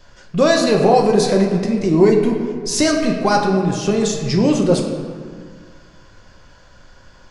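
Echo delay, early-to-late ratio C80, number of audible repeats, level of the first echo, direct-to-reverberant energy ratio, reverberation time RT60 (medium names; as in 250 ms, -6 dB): no echo, 6.0 dB, no echo, no echo, 0.5 dB, 1.8 s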